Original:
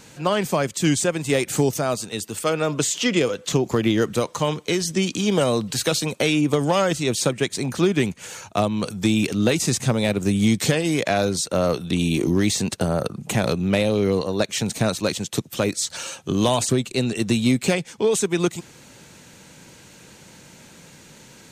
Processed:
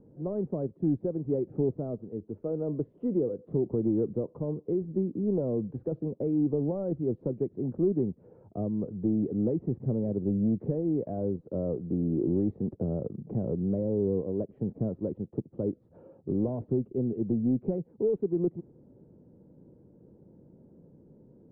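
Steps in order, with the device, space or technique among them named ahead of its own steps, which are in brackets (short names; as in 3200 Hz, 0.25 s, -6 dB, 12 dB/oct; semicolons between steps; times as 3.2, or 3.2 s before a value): overdriven synthesiser ladder filter (soft clip -14 dBFS, distortion -16 dB; ladder low-pass 530 Hz, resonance 30%)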